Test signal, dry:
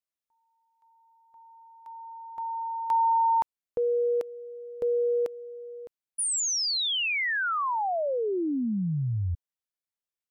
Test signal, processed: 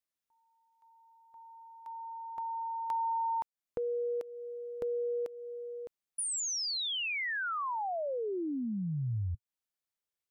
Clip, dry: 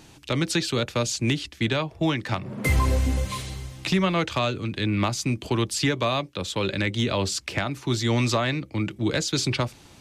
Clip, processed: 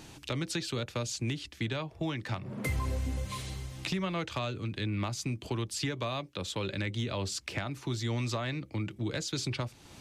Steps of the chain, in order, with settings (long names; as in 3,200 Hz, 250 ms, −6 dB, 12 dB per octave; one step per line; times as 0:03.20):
dynamic equaliser 110 Hz, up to +4 dB, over −36 dBFS, Q 2
downward compressor 2 to 1, threshold −39 dBFS